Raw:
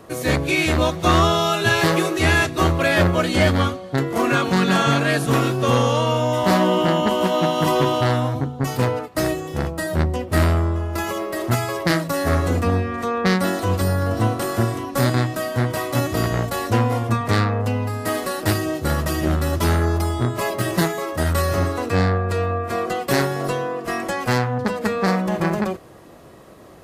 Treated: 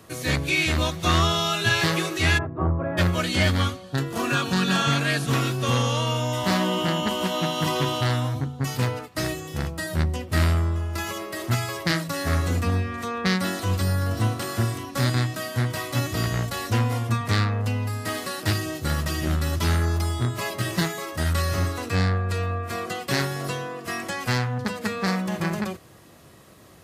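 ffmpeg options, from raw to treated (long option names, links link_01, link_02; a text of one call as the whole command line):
ffmpeg -i in.wav -filter_complex "[0:a]asplit=3[link_01][link_02][link_03];[link_01]afade=type=out:start_time=2.37:duration=0.02[link_04];[link_02]lowpass=frequency=1100:width=0.5412,lowpass=frequency=1100:width=1.3066,afade=type=in:start_time=2.37:duration=0.02,afade=type=out:start_time=2.97:duration=0.02[link_05];[link_03]afade=type=in:start_time=2.97:duration=0.02[link_06];[link_04][link_05][link_06]amix=inputs=3:normalize=0,asettb=1/sr,asplit=3[link_07][link_08][link_09];[link_07]atrim=end=3.834[link_10];[link_08]atrim=start=3.83:end=4.88,asetpts=PTS-STARTPTS,afade=type=in:duration=0.004:curve=qsin,afade=type=out:start_time=1.046:duration=0.004:curve=qsin,asuperstop=centerf=2100:order=4:qfactor=7.3[link_11];[link_09]atrim=start=4.876[link_12];[link_10][link_11]acrossfade=duration=0.004:curve1=hsin:curve2=qsin[link_13];[link_13][link_12]acrossfade=duration=0.004:curve1=qsin:curve2=hsin,highpass=75,acrossover=split=6300[link_14][link_15];[link_15]acompressor=threshold=-40dB:ratio=4:attack=1:release=60[link_16];[link_14][link_16]amix=inputs=2:normalize=0,equalizer=frequency=520:width=0.36:gain=-11,volume=2dB" out.wav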